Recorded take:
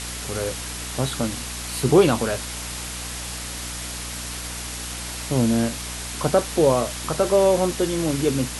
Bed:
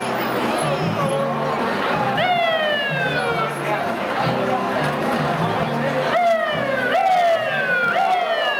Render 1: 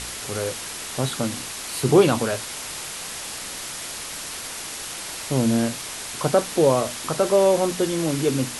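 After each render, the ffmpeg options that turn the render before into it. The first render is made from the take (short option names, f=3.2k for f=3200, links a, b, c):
-af "bandreject=f=60:t=h:w=4,bandreject=f=120:t=h:w=4,bandreject=f=180:t=h:w=4,bandreject=f=240:t=h:w=4,bandreject=f=300:t=h:w=4"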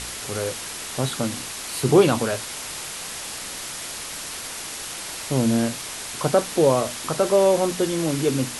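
-af anull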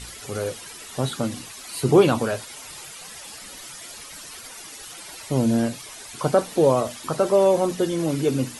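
-af "afftdn=nr=12:nf=-34"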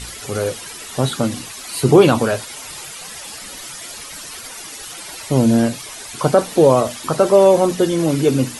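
-af "volume=6.5dB,alimiter=limit=-1dB:level=0:latency=1"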